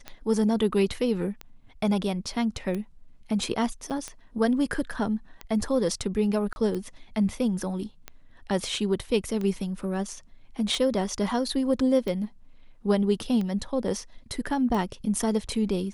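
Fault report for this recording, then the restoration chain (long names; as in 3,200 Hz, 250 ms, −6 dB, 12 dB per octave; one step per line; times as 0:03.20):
scratch tick 45 rpm −20 dBFS
0:03.90–0:03.91: drop-out 6.9 ms
0:06.53–0:06.56: drop-out 31 ms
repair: click removal
repair the gap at 0:03.90, 6.9 ms
repair the gap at 0:06.53, 31 ms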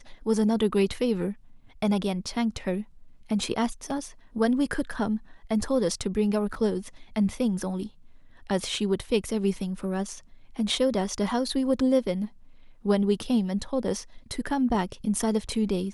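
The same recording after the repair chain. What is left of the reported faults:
none of them is left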